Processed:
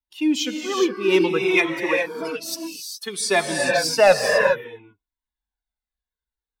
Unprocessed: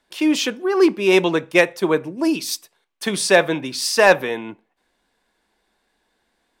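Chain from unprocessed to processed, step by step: per-bin expansion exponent 1.5; 1.54–3.19 HPF 300 Hz 12 dB/oct; non-linear reverb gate 0.44 s rising, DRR 2.5 dB; cascading flanger falling 0.58 Hz; gain +3.5 dB

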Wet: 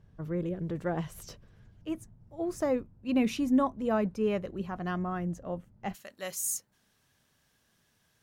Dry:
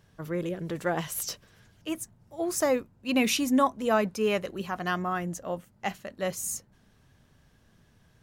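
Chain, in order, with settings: tilt -3 dB/oct, from 5.93 s +2.5 dB/oct; gain -6.5 dB

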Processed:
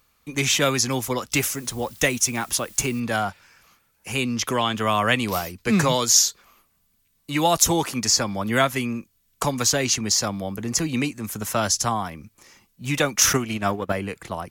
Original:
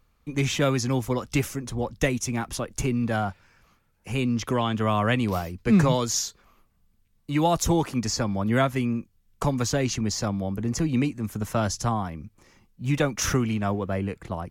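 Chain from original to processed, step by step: 1.32–3 requantised 10-bit, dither triangular; 13.33–13.92 transient shaper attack +12 dB, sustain -10 dB; tilt +2.5 dB/oct; gain +4 dB

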